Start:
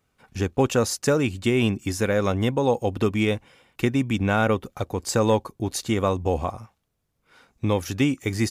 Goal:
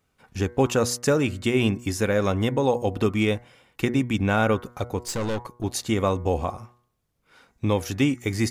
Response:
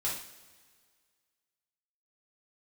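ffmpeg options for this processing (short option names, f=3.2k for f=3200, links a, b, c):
-filter_complex "[0:a]bandreject=f=120.8:t=h:w=4,bandreject=f=241.6:t=h:w=4,bandreject=f=362.4:t=h:w=4,bandreject=f=483.2:t=h:w=4,bandreject=f=604:t=h:w=4,bandreject=f=724.8:t=h:w=4,bandreject=f=845.6:t=h:w=4,bandreject=f=966.4:t=h:w=4,bandreject=f=1.0872k:t=h:w=4,bandreject=f=1.208k:t=h:w=4,bandreject=f=1.3288k:t=h:w=4,bandreject=f=1.4496k:t=h:w=4,bandreject=f=1.5704k:t=h:w=4,bandreject=f=1.6912k:t=h:w=4,bandreject=f=1.812k:t=h:w=4,bandreject=f=1.9328k:t=h:w=4,bandreject=f=2.0536k:t=h:w=4,bandreject=f=2.1744k:t=h:w=4,asettb=1/sr,asplit=3[a][b][c];[a]atrim=end=4.994[d];[b]atrim=start=4.99:end=5.64,asetpts=PTS-STARTPTS,afade=t=in:d=0.004:c=qsin,afade=t=out:st=0.646:d=0.004:c=qsin,aeval=exprs='(tanh(15.8*val(0)+0.45)-tanh(0.45))/15.8':c=same[e];[c]atrim=start=5.636[f];[d][e]acrossfade=d=0.004:c1=hsin:c2=qsin[g];[g][f]acrossfade=d=0.004:c1=qsin:c2=hsin"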